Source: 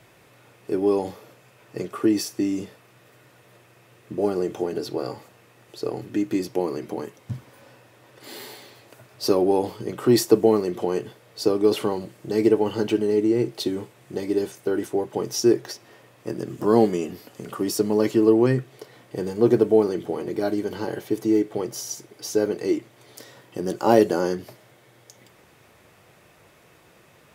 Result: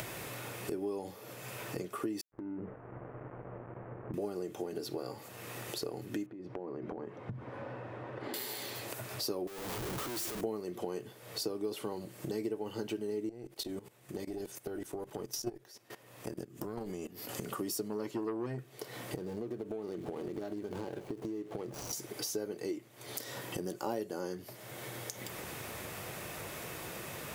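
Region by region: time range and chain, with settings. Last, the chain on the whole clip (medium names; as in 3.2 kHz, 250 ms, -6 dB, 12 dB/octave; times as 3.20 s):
2.21–4.14 s: dead-time distortion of 0.28 ms + Gaussian low-pass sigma 6 samples + compression 12:1, threshold -36 dBFS
6.26–8.34 s: low-pass 1.4 kHz + compression 5:1, threshold -37 dBFS
9.47–10.41 s: compression 12:1, threshold -28 dBFS + Schmitt trigger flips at -48 dBFS
13.29–17.29 s: valve stage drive 10 dB, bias 0.75 + level held to a coarse grid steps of 18 dB
17.88–18.59 s: treble shelf 7 kHz -7 dB + transformer saturation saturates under 610 Hz
19.16–21.93 s: median filter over 25 samples + treble shelf 10 kHz -6 dB + compression 4:1, threshold -31 dBFS
whole clip: upward compressor, threshold -30 dBFS; treble shelf 8.6 kHz +10 dB; compression 4:1, threshold -35 dBFS; trim -1.5 dB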